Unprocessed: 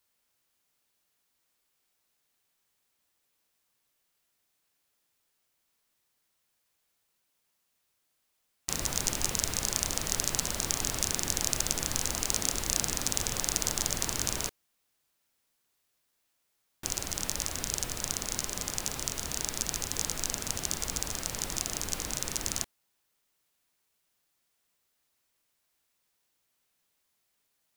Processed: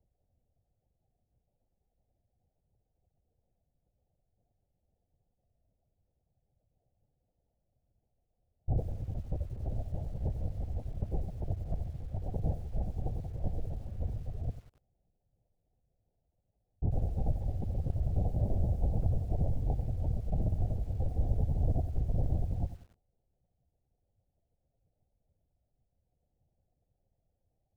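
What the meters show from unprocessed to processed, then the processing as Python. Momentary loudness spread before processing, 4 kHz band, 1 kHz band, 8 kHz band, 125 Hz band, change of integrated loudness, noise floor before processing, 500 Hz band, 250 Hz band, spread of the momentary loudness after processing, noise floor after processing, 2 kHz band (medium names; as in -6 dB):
5 LU, under -35 dB, -9.0 dB, under -40 dB, +10.5 dB, -5.0 dB, -77 dBFS, -2.0 dB, +0.5 dB, 8 LU, -81 dBFS, under -30 dB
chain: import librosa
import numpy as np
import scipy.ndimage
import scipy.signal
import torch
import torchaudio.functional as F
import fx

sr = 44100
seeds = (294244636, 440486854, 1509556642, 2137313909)

y = scipy.signal.sosfilt(scipy.signal.butter(12, 770.0, 'lowpass', fs=sr, output='sos'), x)
y = fx.low_shelf_res(y, sr, hz=140.0, db=12.5, q=3.0)
y = fx.over_compress(y, sr, threshold_db=-31.0, ratio=-0.5)
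y = fx.lpc_vocoder(y, sr, seeds[0], excitation='whisper', order=16)
y = fx.echo_crushed(y, sr, ms=93, feedback_pct=35, bits=9, wet_db=-12.5)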